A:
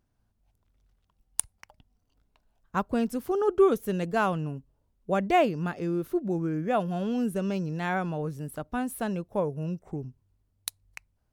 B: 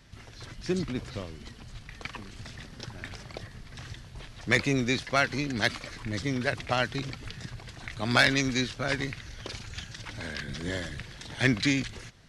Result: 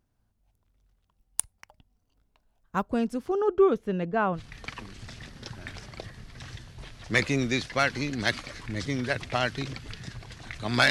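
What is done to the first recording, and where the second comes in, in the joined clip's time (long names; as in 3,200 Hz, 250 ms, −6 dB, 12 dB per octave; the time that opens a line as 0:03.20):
A
0:02.87–0:04.41: low-pass filter 9,900 Hz → 1,800 Hz
0:04.37: continue with B from 0:01.74, crossfade 0.08 s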